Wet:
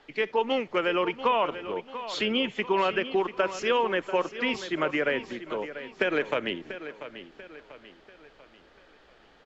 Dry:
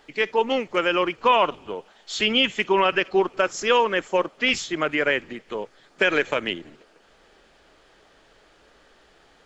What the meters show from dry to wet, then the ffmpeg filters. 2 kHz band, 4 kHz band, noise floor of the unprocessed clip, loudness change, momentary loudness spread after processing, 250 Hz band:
-6.5 dB, -7.5 dB, -57 dBFS, -6.0 dB, 14 LU, -3.0 dB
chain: -filter_complex "[0:a]lowpass=4.6k,acrossover=split=99|930[a][b][c];[a]acompressor=threshold=-58dB:ratio=4[d];[b]acompressor=threshold=-21dB:ratio=4[e];[c]acompressor=threshold=-26dB:ratio=4[f];[d][e][f]amix=inputs=3:normalize=0,aecho=1:1:690|1380|2070|2760:0.237|0.0996|0.0418|0.0176,volume=-2dB"

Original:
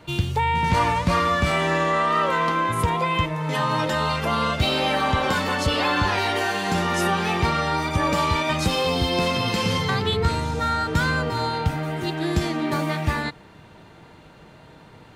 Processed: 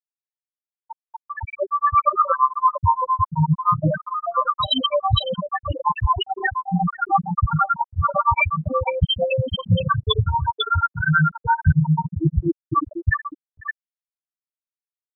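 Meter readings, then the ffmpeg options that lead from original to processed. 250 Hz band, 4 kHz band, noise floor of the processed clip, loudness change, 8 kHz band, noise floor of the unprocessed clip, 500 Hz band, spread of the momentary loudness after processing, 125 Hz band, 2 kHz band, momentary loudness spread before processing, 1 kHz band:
-1.0 dB, -0.5 dB, under -85 dBFS, +1.5 dB, under -40 dB, -48 dBFS, -2.0 dB, 7 LU, +3.0 dB, -2.0 dB, 4 LU, +2.5 dB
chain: -filter_complex "[0:a]flanger=delay=18.5:depth=3.2:speed=0.82,afftfilt=real='re*gte(hypot(re,im),0.282)':imag='im*gte(hypot(re,im),0.282)':win_size=1024:overlap=0.75,areverse,acompressor=threshold=-35dB:ratio=6,areverse,bandreject=f=6.2k:w=5.8,asplit=2[a][b];[b]aecho=0:1:501:0.631[c];[a][c]amix=inputs=2:normalize=0,dynaudnorm=f=990:g=3:m=14.5dB,highshelf=f=2.5k:g=11.5,bandreject=f=50:t=h:w=6,bandreject=f=100:t=h:w=6,bandreject=f=150:t=h:w=6,bandreject=f=200:t=h:w=6,bandreject=f=250:t=h:w=6,bandreject=f=300:t=h:w=6,bandreject=f=350:t=h:w=6,bandreject=f=400:t=h:w=6,bandreject=f=450:t=h:w=6,bandreject=f=500:t=h:w=6,afftfilt=real='re*gte(hypot(re,im),0.562)':imag='im*gte(hypot(re,im),0.562)':win_size=1024:overlap=0.75,lowshelf=f=170:g=5.5,acrossover=split=410[d][e];[d]aeval=exprs='val(0)*(1-1/2+1/2*cos(2*PI*8.7*n/s))':c=same[f];[e]aeval=exprs='val(0)*(1-1/2-1/2*cos(2*PI*8.7*n/s))':c=same[g];[f][g]amix=inputs=2:normalize=0,volume=6.5dB"

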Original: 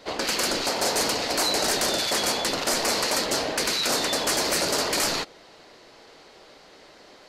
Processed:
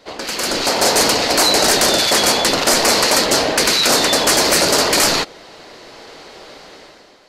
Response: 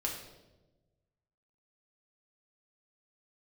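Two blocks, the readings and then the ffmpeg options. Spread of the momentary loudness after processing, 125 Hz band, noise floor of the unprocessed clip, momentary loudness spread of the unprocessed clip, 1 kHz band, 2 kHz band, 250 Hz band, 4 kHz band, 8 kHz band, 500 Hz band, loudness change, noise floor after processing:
6 LU, +10.0 dB, -51 dBFS, 2 LU, +10.0 dB, +10.0 dB, +10.0 dB, +10.0 dB, +10.0 dB, +10.0 dB, +10.0 dB, -45 dBFS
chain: -af "dynaudnorm=f=120:g=9:m=12dB"

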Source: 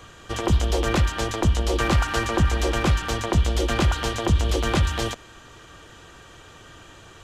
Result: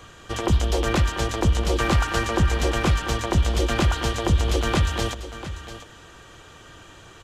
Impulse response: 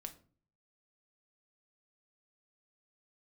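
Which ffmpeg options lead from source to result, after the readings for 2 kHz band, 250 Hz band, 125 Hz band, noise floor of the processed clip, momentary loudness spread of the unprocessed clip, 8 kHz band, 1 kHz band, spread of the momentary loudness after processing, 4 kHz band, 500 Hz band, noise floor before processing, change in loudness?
0.0 dB, 0.0 dB, 0.0 dB, -47 dBFS, 3 LU, 0.0 dB, 0.0 dB, 12 LU, 0.0 dB, 0.0 dB, -47 dBFS, 0.0 dB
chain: -af "aecho=1:1:693:0.224"

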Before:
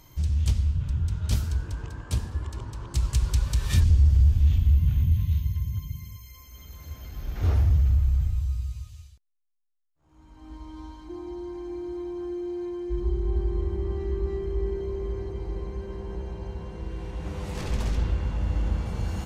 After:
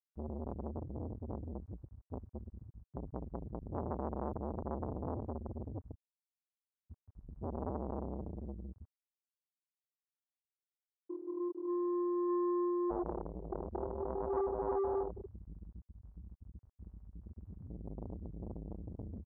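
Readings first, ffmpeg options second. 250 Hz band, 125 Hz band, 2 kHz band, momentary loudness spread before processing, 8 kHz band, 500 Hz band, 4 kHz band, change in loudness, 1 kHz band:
-3.5 dB, -21.0 dB, under -20 dB, 18 LU, under -35 dB, -3.0 dB, under -40 dB, -12.5 dB, +1.5 dB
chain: -filter_complex "[0:a]asplit=2[a][b];[b]alimiter=limit=-20dB:level=0:latency=1:release=126,volume=1.5dB[c];[a][c]amix=inputs=2:normalize=0,aecho=1:1:177|354|531:0.141|0.0438|0.0136,afftfilt=real='re*gte(hypot(re,im),0.447)':imag='im*gte(hypot(re,im),0.447)':win_size=1024:overlap=0.75,asoftclip=type=tanh:threshold=-25dB,bandpass=f=1k:t=q:w=1.7:csg=0,volume=9.5dB"

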